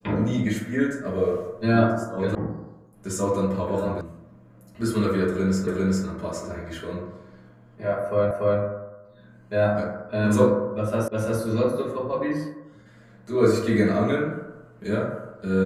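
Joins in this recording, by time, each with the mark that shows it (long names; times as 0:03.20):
0:02.35: cut off before it has died away
0:04.01: cut off before it has died away
0:05.67: the same again, the last 0.4 s
0:08.31: the same again, the last 0.29 s
0:11.08: cut off before it has died away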